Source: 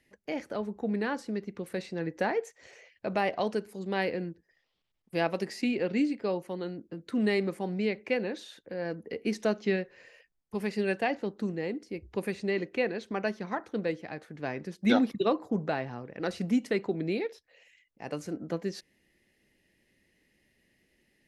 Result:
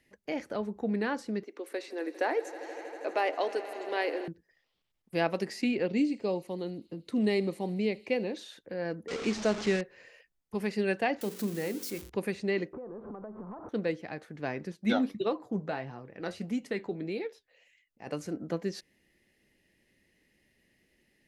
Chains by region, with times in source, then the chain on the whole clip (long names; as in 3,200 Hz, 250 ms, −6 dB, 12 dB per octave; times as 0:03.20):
0:01.43–0:04.28: elliptic high-pass filter 280 Hz + echo that builds up and dies away 80 ms, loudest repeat 5, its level −18 dB
0:05.86–0:08.37: parametric band 1,500 Hz −10.5 dB 0.68 octaves + delay with a high-pass on its return 78 ms, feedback 78%, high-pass 4,000 Hz, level −16 dB
0:09.08–0:09.81: linear delta modulator 64 kbit/s, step −31 dBFS + low-pass filter 7,000 Hz 24 dB per octave
0:11.21–0:12.10: spike at every zero crossing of −31 dBFS + hum removal 45.99 Hz, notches 12
0:12.73–0:13.69: converter with a step at zero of −36 dBFS + Chebyshev low-pass filter 1,200 Hz, order 4 + downward compressor 20 to 1, threshold −38 dBFS
0:14.72–0:18.07: notch filter 5,400 Hz, Q 29 + flanger 1.6 Hz, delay 5.4 ms, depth 6.8 ms, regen +60%
whole clip: no processing